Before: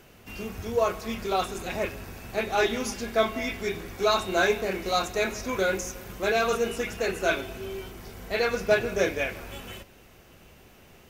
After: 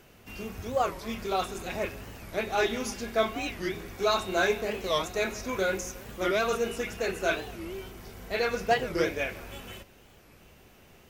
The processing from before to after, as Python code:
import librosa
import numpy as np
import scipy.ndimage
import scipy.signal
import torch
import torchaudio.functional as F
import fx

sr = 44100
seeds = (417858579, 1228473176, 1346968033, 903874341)

y = fx.record_warp(x, sr, rpm=45.0, depth_cents=250.0)
y = y * 10.0 ** (-2.5 / 20.0)